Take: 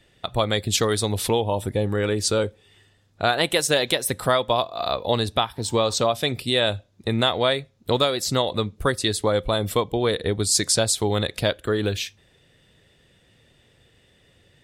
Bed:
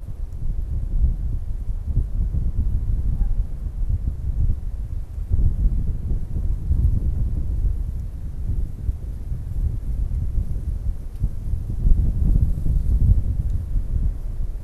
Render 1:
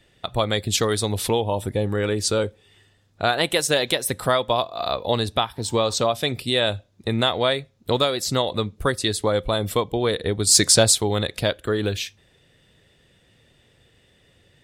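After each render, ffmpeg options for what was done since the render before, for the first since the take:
-filter_complex "[0:a]asettb=1/sr,asplit=3[a][b][c];[a]atrim=end=10.474[d];[b]atrim=start=10.47:end=10.98,asetpts=PTS-STARTPTS,afade=t=in:d=0.004:c=qsin,afade=t=out:st=0.506:d=0.004:c=qsin,acontrast=43[e];[c]atrim=start=10.976[f];[d][e]acrossfade=d=0.004:c1=hsin:c2=qsin[g];[g][f]acrossfade=d=0.004:c1=qsin:c2=hsin"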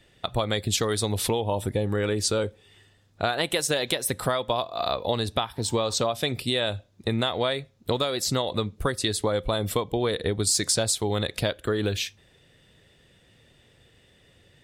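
-af "acompressor=threshold=-21dB:ratio=6"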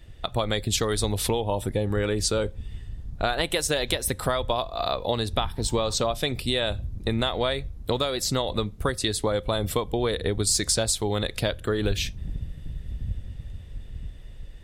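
-filter_complex "[1:a]volume=-14.5dB[a];[0:a][a]amix=inputs=2:normalize=0"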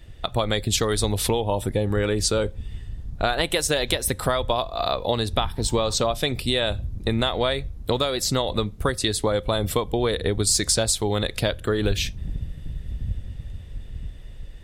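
-af "volume=2.5dB"

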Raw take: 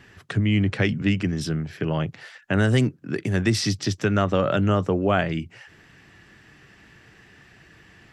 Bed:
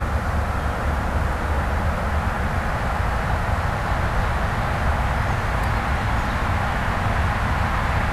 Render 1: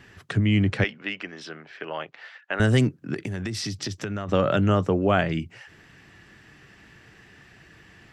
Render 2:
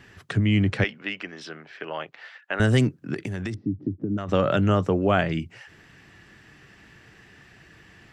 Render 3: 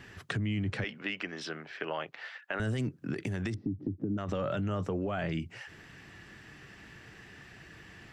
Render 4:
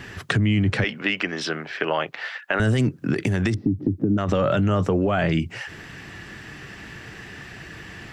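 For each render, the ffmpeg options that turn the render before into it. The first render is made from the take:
-filter_complex "[0:a]asettb=1/sr,asplit=3[a][b][c];[a]atrim=end=0.844[d];[b]atrim=start=0.84:end=2.6,asetpts=PTS-STARTPTS,afade=t=in:d=0.004:c=qsin,afade=t=out:st=1.756:d=0.004:c=qsin,highpass=620,lowpass=3.5k[e];[c]atrim=start=2.596[f];[d][e]acrossfade=d=0.004:c1=hsin:c2=qsin[g];[g][f]acrossfade=d=0.004:c1=qsin:c2=hsin,asettb=1/sr,asplit=3[h][i][j];[h]atrim=end=3.144[k];[i]atrim=start=3.14:end=4.29,asetpts=PTS-STARTPTS,afade=t=in:d=0.004:c=qsin,afade=t=out:st=1.146:d=0.004:c=qsin,acompressor=threshold=-26dB:ratio=10:attack=3.2:release=140:knee=1:detection=peak[l];[j]atrim=start=4.286[m];[k][l]acrossfade=d=0.004:c1=hsin:c2=qsin[n];[n][m]acrossfade=d=0.004:c1=qsin:c2=hsin"
-filter_complex "[0:a]asettb=1/sr,asplit=3[a][b][c];[a]atrim=end=3.544[d];[b]atrim=start=3.54:end=4.18,asetpts=PTS-STARTPTS,afade=t=in:d=0.004:c=qsin,afade=t=out:st=0.636:d=0.004:c=qsin,lowpass=f=290:t=q:w=3.2[e];[c]atrim=start=4.176[f];[d][e]acrossfade=d=0.004:c1=hsin:c2=qsin[g];[g][f]acrossfade=d=0.004:c1=qsin:c2=hsin"
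-af "alimiter=limit=-19.5dB:level=0:latency=1:release=10,acompressor=threshold=-31dB:ratio=3"
-af "volume=12dB"

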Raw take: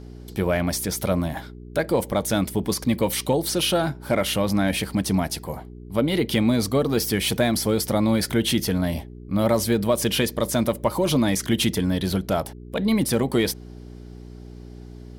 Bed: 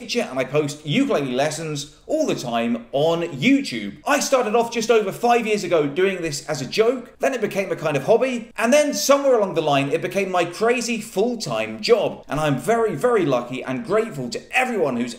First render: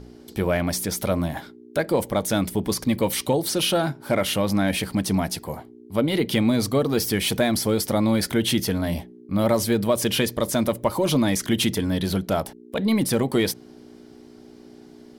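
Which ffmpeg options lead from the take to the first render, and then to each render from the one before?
-af "bandreject=f=60:t=h:w=4,bandreject=f=120:t=h:w=4,bandreject=f=180:t=h:w=4"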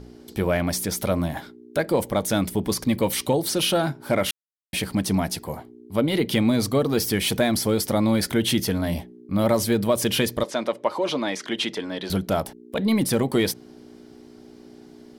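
-filter_complex "[0:a]asettb=1/sr,asplit=3[a][b][c];[a]atrim=end=10.434[d];[b]atrim=start=10.43:end=12.1,asetpts=PTS-STARTPTS,afade=t=in:d=0.004:c=qsin,afade=t=out:st=1.666:d=0.004:c=qsin,highpass=380,lowpass=4.5k[e];[c]atrim=start=12.096[f];[d][e]acrossfade=d=0.004:c1=hsin:c2=qsin[g];[g][f]acrossfade=d=0.004:c1=qsin:c2=hsin,asplit=3[h][i][j];[h]atrim=end=4.31,asetpts=PTS-STARTPTS,afade=t=out:st=4.306:d=0.004:c=hsin[k];[i]atrim=start=4.31:end=4.73,asetpts=PTS-STARTPTS,volume=0[l];[j]atrim=start=4.73,asetpts=PTS-STARTPTS,afade=t=in:d=0.004:c=hsin[m];[k][l][m]concat=n=3:v=0:a=1"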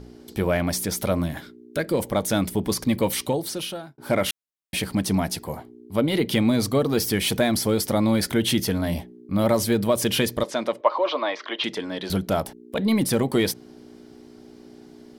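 -filter_complex "[0:a]asettb=1/sr,asplit=3[a][b][c];[a]atrim=end=1.234[d];[b]atrim=start=1.23:end=2,asetpts=PTS-STARTPTS,afade=t=in:d=0.004:c=qsin,afade=t=out:st=0.766:d=0.004:c=qsin,equalizer=f=810:w=2:g=-9.5[e];[c]atrim=start=1.996[f];[d][e]acrossfade=d=0.004:c1=hsin:c2=qsin[g];[g][f]acrossfade=d=0.004:c1=qsin:c2=hsin,asettb=1/sr,asplit=3[h][i][j];[h]atrim=end=10.814[k];[i]atrim=start=10.81:end=11.64,asetpts=PTS-STARTPTS,afade=t=in:d=0.004:c=qsin,afade=t=out:st=0.826:d=0.004:c=qsin,highpass=f=340:w=0.5412,highpass=f=340:w=1.3066,equalizer=f=400:t=q:w=4:g=-5,equalizer=f=620:t=q:w=4:g=5,equalizer=f=1.1k:t=q:w=4:g=9,lowpass=f=4.3k:w=0.5412,lowpass=f=4.3k:w=1.3066[l];[j]atrim=start=11.636[m];[k][l]acrossfade=d=0.004:c1=hsin:c2=qsin[n];[n][m]acrossfade=d=0.004:c1=qsin:c2=hsin,asplit=2[o][p];[o]atrim=end=3.98,asetpts=PTS-STARTPTS,afade=t=out:st=3.09:d=0.89[q];[p]atrim=start=3.98,asetpts=PTS-STARTPTS,afade=t=in:d=0.004:c=hsin[r];[q][r]concat=n=2:v=0:a=1"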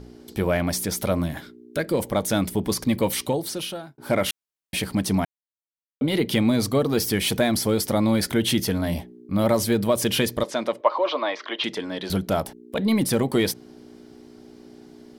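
-filter_complex "[0:a]asplit=3[a][b][c];[a]atrim=end=5.25,asetpts=PTS-STARTPTS,afade=t=out:st=5.246:d=0.004:c=hsin[d];[b]atrim=start=5.25:end=6.01,asetpts=PTS-STARTPTS,volume=0[e];[c]atrim=start=6.01,asetpts=PTS-STARTPTS,afade=t=in:d=0.004:c=hsin[f];[d][e][f]concat=n=3:v=0:a=1"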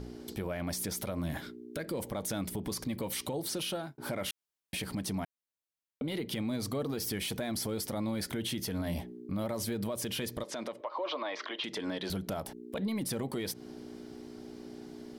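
-af "acompressor=threshold=-27dB:ratio=6,alimiter=level_in=2.5dB:limit=-24dB:level=0:latency=1:release=101,volume=-2.5dB"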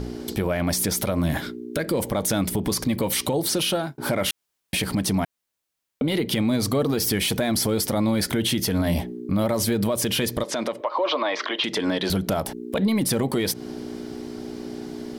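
-af "volume=12dB"

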